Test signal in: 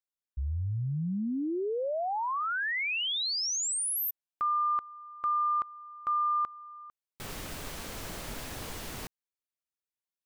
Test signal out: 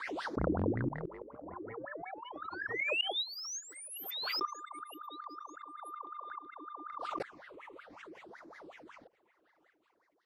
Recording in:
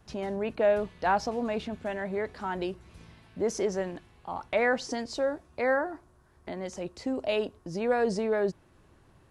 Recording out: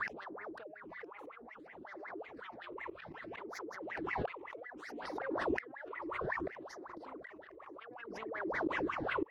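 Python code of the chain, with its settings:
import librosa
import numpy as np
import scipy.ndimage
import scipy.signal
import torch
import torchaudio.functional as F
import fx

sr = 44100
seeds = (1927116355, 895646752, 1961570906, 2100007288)

y = fx.octave_divider(x, sr, octaves=2, level_db=-2.0)
y = scipy.signal.sosfilt(scipy.signal.butter(2, 5400.0, 'lowpass', fs=sr, output='sos'), y)
y = fx.high_shelf(y, sr, hz=2100.0, db=4.5)
y = fx.over_compress(y, sr, threshold_db=-36.0, ratio=-1.0)
y = fx.fold_sine(y, sr, drive_db=18, ceiling_db=-17.5)
y = fx.wah_lfo(y, sr, hz=5.4, low_hz=300.0, high_hz=2100.0, q=17.0)
y = fx.gate_flip(y, sr, shuts_db=-37.0, range_db=-28)
y = fx.phaser_stages(y, sr, stages=8, low_hz=200.0, high_hz=3000.0, hz=0.62, feedback_pct=0)
y = fx.echo_feedback(y, sr, ms=965, feedback_pct=20, wet_db=-24.0)
y = fx.pre_swell(y, sr, db_per_s=24.0)
y = F.gain(torch.from_numpy(y), 16.0).numpy()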